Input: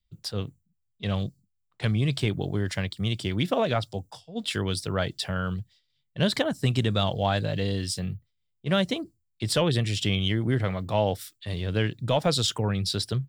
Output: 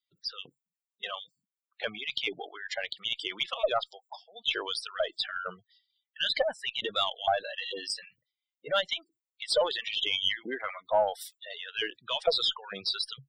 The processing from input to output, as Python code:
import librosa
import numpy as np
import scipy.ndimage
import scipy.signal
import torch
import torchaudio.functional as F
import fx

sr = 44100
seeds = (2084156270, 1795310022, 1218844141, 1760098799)

y = fx.filter_lfo_highpass(x, sr, shape='saw_up', hz=2.2, low_hz=580.0, high_hz=2200.0, q=1.2)
y = fx.dynamic_eq(y, sr, hz=3100.0, q=3.4, threshold_db=-43.0, ratio=4.0, max_db=3)
y = fx.spec_gate(y, sr, threshold_db=-10, keep='strong')
y = fx.low_shelf(y, sr, hz=430.0, db=5.5)
y = fx.cheby_harmonics(y, sr, harmonics=(4, 5), levels_db=(-30, -42), full_scale_db=-12.5)